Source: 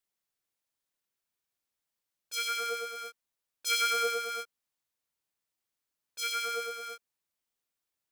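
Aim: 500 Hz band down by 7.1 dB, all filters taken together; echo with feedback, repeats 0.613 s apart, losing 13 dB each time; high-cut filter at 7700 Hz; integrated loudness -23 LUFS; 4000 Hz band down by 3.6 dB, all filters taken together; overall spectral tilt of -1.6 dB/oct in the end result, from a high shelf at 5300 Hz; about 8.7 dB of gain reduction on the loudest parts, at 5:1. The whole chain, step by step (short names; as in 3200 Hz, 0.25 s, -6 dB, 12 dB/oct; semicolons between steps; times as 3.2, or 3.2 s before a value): LPF 7700 Hz; bell 500 Hz -7.5 dB; bell 4000 Hz -6 dB; high shelf 5300 Hz +4.5 dB; compressor 5:1, threshold -35 dBFS; feedback echo 0.613 s, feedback 22%, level -13 dB; gain +17 dB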